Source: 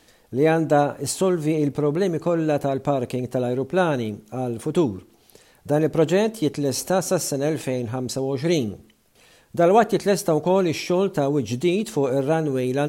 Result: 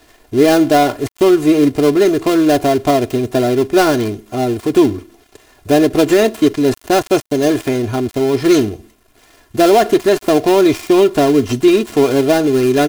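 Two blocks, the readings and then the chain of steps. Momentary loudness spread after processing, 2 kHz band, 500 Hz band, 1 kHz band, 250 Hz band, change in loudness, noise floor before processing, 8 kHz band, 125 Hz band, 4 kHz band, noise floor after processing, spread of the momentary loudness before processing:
6 LU, +8.5 dB, +8.5 dB, +8.0 dB, +10.0 dB, +8.5 dB, -57 dBFS, +4.0 dB, +2.5 dB, +10.0 dB, -51 dBFS, 7 LU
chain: dead-time distortion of 0.16 ms; comb 2.9 ms, depth 74%; loudness maximiser +9 dB; trim -1 dB

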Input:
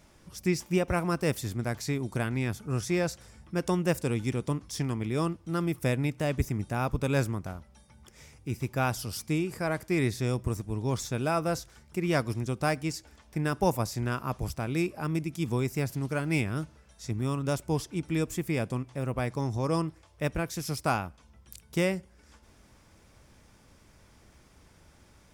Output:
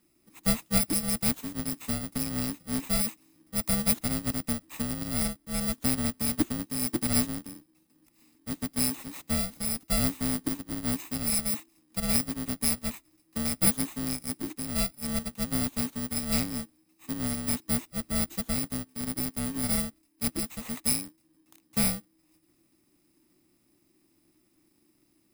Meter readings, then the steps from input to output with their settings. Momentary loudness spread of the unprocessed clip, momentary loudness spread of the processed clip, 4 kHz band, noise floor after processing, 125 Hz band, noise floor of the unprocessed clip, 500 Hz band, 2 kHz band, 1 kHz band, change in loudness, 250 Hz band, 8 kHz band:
7 LU, 8 LU, +6.0 dB, -69 dBFS, -7.0 dB, -59 dBFS, -10.0 dB, -4.5 dB, -7.5 dB, +2.0 dB, 0.0 dB, +10.5 dB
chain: bit-reversed sample order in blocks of 64 samples; frequency shift -380 Hz; upward expansion 1.5:1, over -46 dBFS; trim +2.5 dB

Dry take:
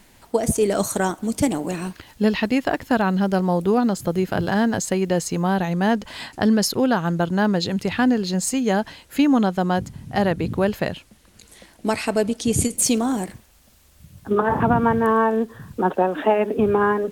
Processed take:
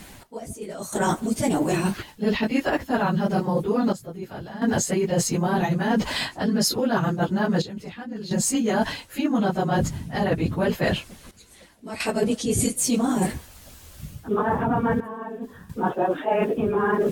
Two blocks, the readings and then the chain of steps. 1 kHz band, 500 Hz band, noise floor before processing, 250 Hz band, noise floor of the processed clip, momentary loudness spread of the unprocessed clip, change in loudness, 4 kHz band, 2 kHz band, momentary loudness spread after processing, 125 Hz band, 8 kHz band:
-3.5 dB, -3.5 dB, -54 dBFS, -3.5 dB, -48 dBFS, 7 LU, -3.0 dB, -1.0 dB, -2.5 dB, 13 LU, -1.5 dB, -1.5 dB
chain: phase randomisation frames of 50 ms; reverse; compression 12:1, threshold -28 dBFS, peak gain reduction 18 dB; reverse; trance gate "x...xxxxxxxxxxxx" 65 bpm -12 dB; trim +9 dB

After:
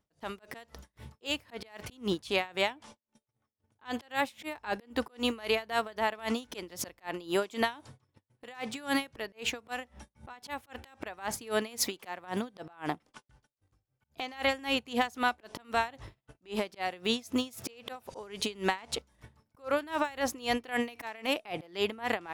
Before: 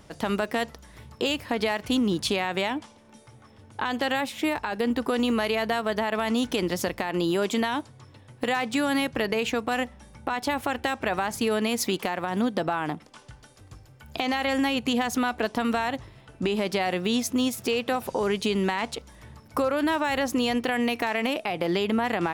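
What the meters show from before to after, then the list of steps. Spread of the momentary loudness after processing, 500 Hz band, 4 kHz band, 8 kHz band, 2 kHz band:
15 LU, -7.5 dB, -5.0 dB, -4.5 dB, -6.0 dB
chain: gate -46 dBFS, range -28 dB; dynamic bell 180 Hz, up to -7 dB, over -39 dBFS, Q 0.81; slow attack 179 ms; logarithmic tremolo 3.8 Hz, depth 22 dB; trim +1.5 dB

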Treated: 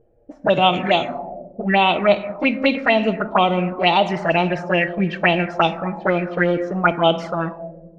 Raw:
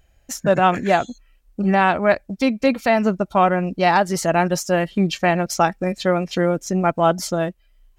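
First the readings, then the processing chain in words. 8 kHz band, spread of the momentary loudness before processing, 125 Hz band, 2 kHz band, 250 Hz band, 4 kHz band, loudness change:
under -20 dB, 7 LU, -1.0 dB, +3.0 dB, -1.0 dB, +7.0 dB, +0.5 dB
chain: companding laws mixed up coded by mu; bass shelf 130 Hz -11.5 dB; touch-sensitive flanger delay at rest 8.8 ms, full sweep at -14.5 dBFS; simulated room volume 960 m³, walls mixed, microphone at 0.56 m; touch-sensitive low-pass 460–3300 Hz up, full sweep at -16 dBFS; trim +2 dB

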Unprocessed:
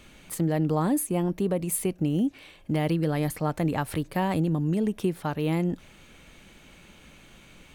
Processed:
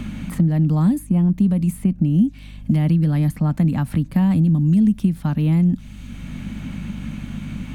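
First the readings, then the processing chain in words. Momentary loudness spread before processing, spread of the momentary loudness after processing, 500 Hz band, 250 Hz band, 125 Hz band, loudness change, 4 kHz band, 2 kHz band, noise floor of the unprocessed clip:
5 LU, 14 LU, -6.0 dB, +9.5 dB, +11.5 dB, +8.5 dB, no reading, -0.5 dB, -53 dBFS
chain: resonant low shelf 300 Hz +10 dB, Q 3; hum 50 Hz, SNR 24 dB; three bands compressed up and down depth 70%; trim -3 dB

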